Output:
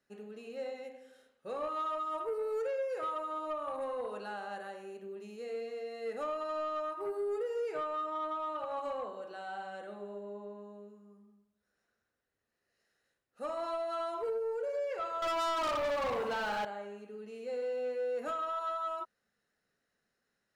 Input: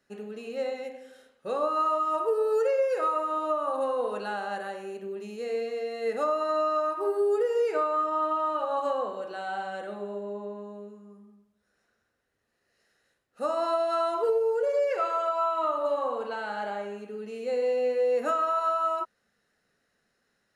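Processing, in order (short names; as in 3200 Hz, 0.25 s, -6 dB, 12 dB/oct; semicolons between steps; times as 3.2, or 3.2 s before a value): 15.22–16.65 sample leveller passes 3; soft clip -20.5 dBFS, distortion -20 dB; gain -8 dB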